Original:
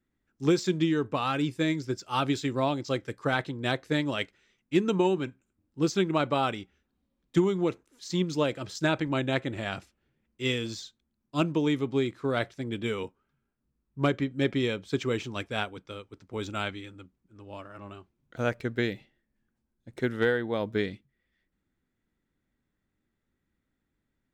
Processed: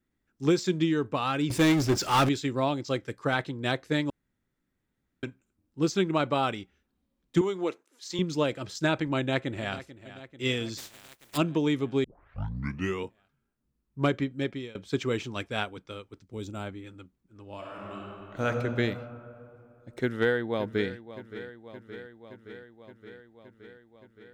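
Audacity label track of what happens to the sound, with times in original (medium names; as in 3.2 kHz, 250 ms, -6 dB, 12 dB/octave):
1.500000	2.290000	power-law waveshaper exponent 0.5
4.100000	5.230000	room tone
7.410000	8.190000	high-pass 350 Hz
9.170000	9.760000	echo throw 440 ms, feedback 70%, level -15.5 dB
10.770000	11.360000	spectral contrast reduction exponent 0.27
12.040000	12.040000	tape start 0.99 s
14.220000	14.750000	fade out, to -22 dB
16.190000	16.850000	peaking EQ 820 Hz -> 4.7 kHz -13 dB 2.5 oct
17.550000	18.450000	reverb throw, RT60 2.8 s, DRR -3.5 dB
19.990000	20.920000	echo throw 570 ms, feedback 75%, level -14.5 dB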